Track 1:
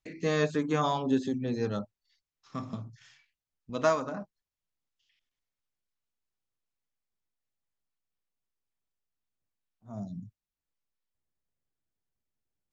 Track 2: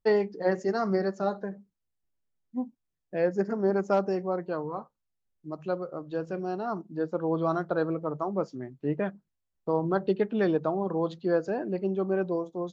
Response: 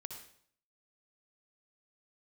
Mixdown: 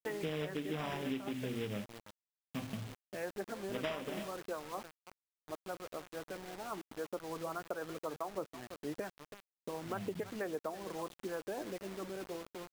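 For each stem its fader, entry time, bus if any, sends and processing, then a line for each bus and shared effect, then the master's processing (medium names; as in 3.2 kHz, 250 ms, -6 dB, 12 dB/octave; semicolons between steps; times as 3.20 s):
-2.0 dB, 0.00 s, no send, echo send -20 dB, low-pass 1.3 kHz 12 dB/octave; hum notches 60/120/180/240 Hz; delay time shaken by noise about 3 kHz, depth 0.18 ms
-4.0 dB, 0.00 s, no send, echo send -16.5 dB, harmonic-percussive split harmonic -13 dB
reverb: none
echo: delay 328 ms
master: Savitzky-Golay filter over 25 samples; bit crusher 8-bit; compression 6:1, threshold -35 dBFS, peak gain reduction 11.5 dB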